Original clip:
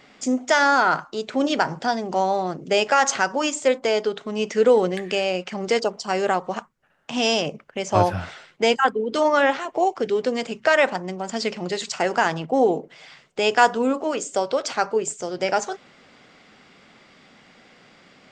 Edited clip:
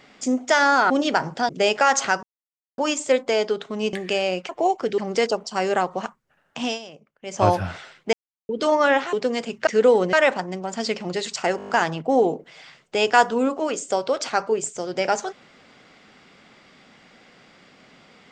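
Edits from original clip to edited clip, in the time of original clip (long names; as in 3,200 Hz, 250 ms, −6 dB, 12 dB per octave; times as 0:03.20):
0:00.90–0:01.35: remove
0:01.94–0:02.60: remove
0:03.34: splice in silence 0.55 s
0:04.49–0:04.95: move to 0:10.69
0:07.15–0:07.91: duck −17.5 dB, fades 0.17 s
0:08.66–0:09.02: silence
0:09.66–0:10.15: move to 0:05.51
0:12.13: stutter 0.02 s, 7 plays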